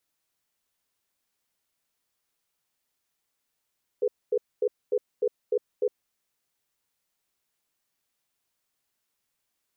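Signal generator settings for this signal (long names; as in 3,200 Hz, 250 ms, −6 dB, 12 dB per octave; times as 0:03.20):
tone pair in a cadence 420 Hz, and 491 Hz, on 0.06 s, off 0.24 s, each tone −24 dBFS 2.03 s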